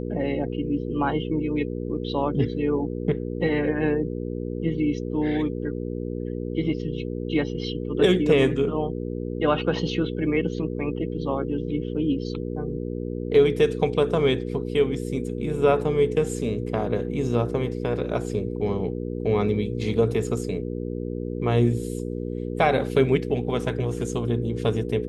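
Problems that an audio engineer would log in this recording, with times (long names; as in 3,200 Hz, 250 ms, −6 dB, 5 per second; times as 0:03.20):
mains hum 60 Hz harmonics 8 −30 dBFS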